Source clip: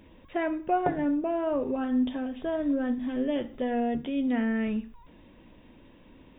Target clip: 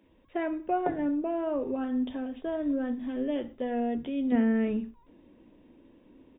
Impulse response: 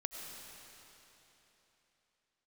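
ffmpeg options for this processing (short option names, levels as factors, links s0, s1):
-filter_complex "[0:a]agate=range=0.501:threshold=0.01:ratio=16:detection=peak,asetnsamples=n=441:p=0,asendcmd='4.32 equalizer g 12',equalizer=f=310:t=o:w=2:g=4,acrossover=split=170[s0][s1];[s0]adelay=30[s2];[s2][s1]amix=inputs=2:normalize=0,volume=0.596"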